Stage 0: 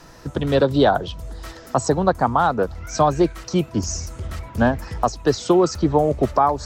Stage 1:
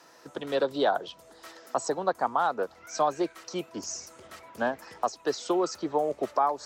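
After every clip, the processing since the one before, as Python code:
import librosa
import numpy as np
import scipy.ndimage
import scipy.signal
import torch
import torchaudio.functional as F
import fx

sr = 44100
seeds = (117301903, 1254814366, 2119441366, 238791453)

y = scipy.signal.sosfilt(scipy.signal.butter(2, 380.0, 'highpass', fs=sr, output='sos'), x)
y = F.gain(torch.from_numpy(y), -7.5).numpy()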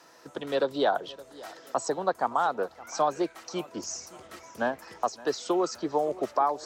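y = fx.echo_feedback(x, sr, ms=567, feedback_pct=43, wet_db=-20.0)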